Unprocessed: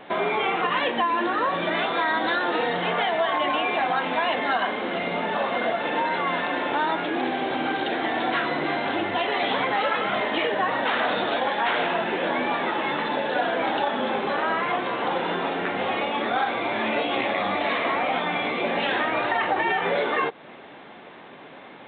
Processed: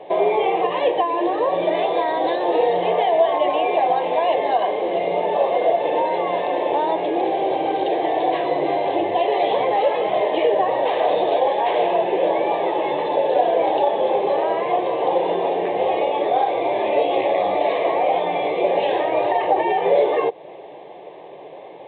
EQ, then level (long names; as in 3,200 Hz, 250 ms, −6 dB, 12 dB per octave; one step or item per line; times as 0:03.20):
high-pass filter 330 Hz 12 dB per octave
spectral tilt −4.5 dB per octave
phaser with its sweep stopped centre 580 Hz, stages 4
+6.5 dB